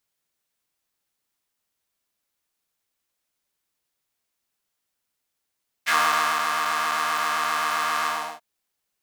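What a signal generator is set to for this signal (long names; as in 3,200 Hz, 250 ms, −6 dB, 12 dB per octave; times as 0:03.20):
subtractive patch with pulse-width modulation D#3, oscillator 2 square, interval +7 semitones, oscillator 2 level −3.5 dB, filter highpass, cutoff 770 Hz, Q 2.9, filter envelope 1.5 octaves, filter decay 0.08 s, attack 26 ms, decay 0.52 s, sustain −5.5 dB, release 0.35 s, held 2.19 s, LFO 7.6 Hz, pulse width 31%, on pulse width 11%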